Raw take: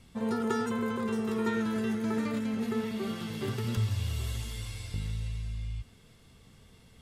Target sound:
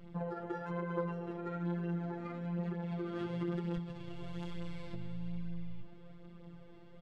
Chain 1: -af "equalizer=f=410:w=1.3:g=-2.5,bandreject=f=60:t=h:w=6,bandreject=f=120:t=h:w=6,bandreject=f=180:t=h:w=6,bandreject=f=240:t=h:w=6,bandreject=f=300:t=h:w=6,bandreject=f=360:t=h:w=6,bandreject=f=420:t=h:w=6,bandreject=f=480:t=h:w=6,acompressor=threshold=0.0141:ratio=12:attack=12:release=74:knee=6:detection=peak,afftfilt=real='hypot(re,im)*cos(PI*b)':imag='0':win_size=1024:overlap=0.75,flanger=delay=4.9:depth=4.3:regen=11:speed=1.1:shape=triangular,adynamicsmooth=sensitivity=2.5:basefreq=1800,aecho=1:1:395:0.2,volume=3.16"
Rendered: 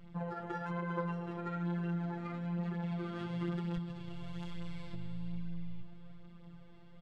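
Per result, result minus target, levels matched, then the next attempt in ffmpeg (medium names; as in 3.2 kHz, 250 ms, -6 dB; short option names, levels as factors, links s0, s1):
echo-to-direct +8.5 dB; 500 Hz band -3.5 dB
-af "equalizer=f=410:w=1.3:g=-2.5,bandreject=f=60:t=h:w=6,bandreject=f=120:t=h:w=6,bandreject=f=180:t=h:w=6,bandreject=f=240:t=h:w=6,bandreject=f=300:t=h:w=6,bandreject=f=360:t=h:w=6,bandreject=f=420:t=h:w=6,bandreject=f=480:t=h:w=6,acompressor=threshold=0.0141:ratio=12:attack=12:release=74:knee=6:detection=peak,afftfilt=real='hypot(re,im)*cos(PI*b)':imag='0':win_size=1024:overlap=0.75,flanger=delay=4.9:depth=4.3:regen=11:speed=1.1:shape=triangular,adynamicsmooth=sensitivity=2.5:basefreq=1800,aecho=1:1:395:0.075,volume=3.16"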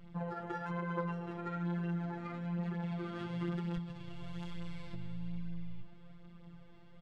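500 Hz band -3.5 dB
-af "equalizer=f=410:w=1.3:g=6,bandreject=f=60:t=h:w=6,bandreject=f=120:t=h:w=6,bandreject=f=180:t=h:w=6,bandreject=f=240:t=h:w=6,bandreject=f=300:t=h:w=6,bandreject=f=360:t=h:w=6,bandreject=f=420:t=h:w=6,bandreject=f=480:t=h:w=6,acompressor=threshold=0.0141:ratio=12:attack=12:release=74:knee=6:detection=peak,afftfilt=real='hypot(re,im)*cos(PI*b)':imag='0':win_size=1024:overlap=0.75,flanger=delay=4.9:depth=4.3:regen=11:speed=1.1:shape=triangular,adynamicsmooth=sensitivity=2.5:basefreq=1800,aecho=1:1:395:0.075,volume=3.16"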